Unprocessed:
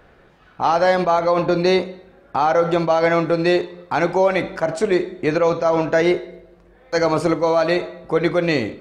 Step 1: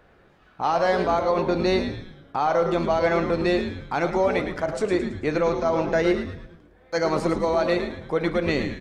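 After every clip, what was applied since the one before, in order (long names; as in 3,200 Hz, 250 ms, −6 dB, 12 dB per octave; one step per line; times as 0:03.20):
echo with shifted repeats 110 ms, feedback 44%, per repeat −130 Hz, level −8 dB
level −5.5 dB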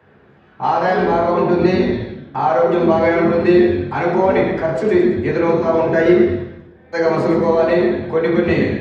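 convolution reverb RT60 0.85 s, pre-delay 3 ms, DRR −4.5 dB
level −7.5 dB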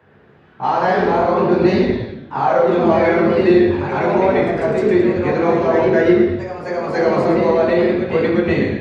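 delay with pitch and tempo change per echo 107 ms, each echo +1 semitone, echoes 2, each echo −6 dB
level −1 dB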